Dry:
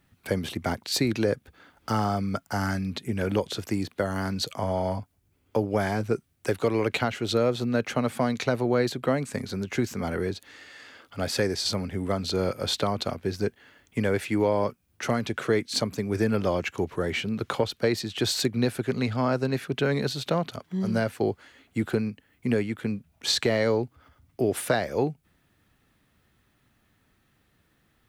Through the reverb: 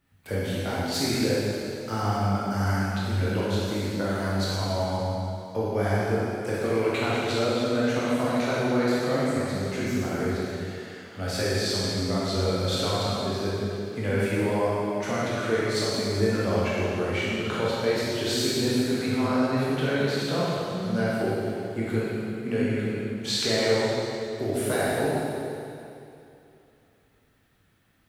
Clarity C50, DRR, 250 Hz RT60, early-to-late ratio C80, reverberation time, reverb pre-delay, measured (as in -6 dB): -4.5 dB, -8.5 dB, 2.7 s, -2.5 dB, 2.7 s, 7 ms